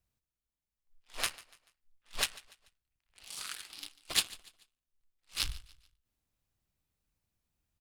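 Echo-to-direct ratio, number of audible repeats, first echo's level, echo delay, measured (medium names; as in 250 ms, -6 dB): -20.0 dB, 2, -20.5 dB, 145 ms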